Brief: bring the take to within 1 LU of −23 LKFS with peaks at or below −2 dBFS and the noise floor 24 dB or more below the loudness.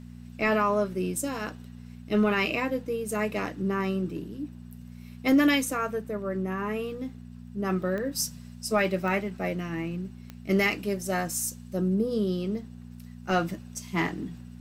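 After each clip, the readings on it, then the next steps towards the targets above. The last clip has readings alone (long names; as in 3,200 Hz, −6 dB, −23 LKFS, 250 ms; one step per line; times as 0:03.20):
number of clicks 4; mains hum 60 Hz; hum harmonics up to 240 Hz; level of the hum −41 dBFS; integrated loudness −28.5 LKFS; sample peak −13.0 dBFS; target loudness −23.0 LKFS
→ click removal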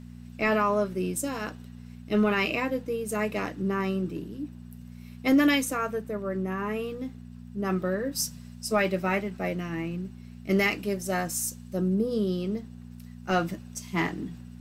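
number of clicks 0; mains hum 60 Hz; hum harmonics up to 240 Hz; level of the hum −41 dBFS
→ hum removal 60 Hz, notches 4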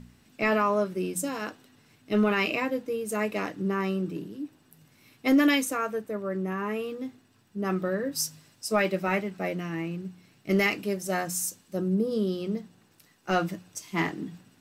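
mains hum none found; integrated loudness −28.5 LKFS; sample peak −13.0 dBFS; target loudness −23.0 LKFS
→ level +5.5 dB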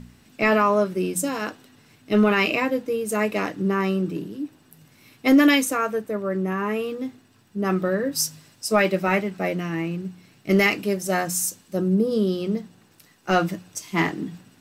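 integrated loudness −23.0 LKFS; sample peak −7.5 dBFS; background noise floor −57 dBFS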